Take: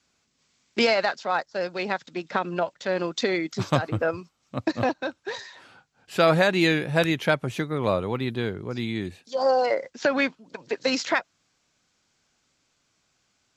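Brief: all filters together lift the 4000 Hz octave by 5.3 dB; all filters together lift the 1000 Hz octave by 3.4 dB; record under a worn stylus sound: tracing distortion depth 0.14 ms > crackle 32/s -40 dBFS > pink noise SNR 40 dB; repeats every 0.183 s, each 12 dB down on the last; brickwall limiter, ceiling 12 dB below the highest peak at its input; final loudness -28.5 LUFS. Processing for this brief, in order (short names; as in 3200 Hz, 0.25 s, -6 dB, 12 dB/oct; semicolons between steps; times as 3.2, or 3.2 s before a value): bell 1000 Hz +4.5 dB; bell 4000 Hz +6 dB; limiter -16 dBFS; feedback echo 0.183 s, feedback 25%, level -12 dB; tracing distortion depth 0.14 ms; crackle 32/s -40 dBFS; pink noise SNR 40 dB; gain -0.5 dB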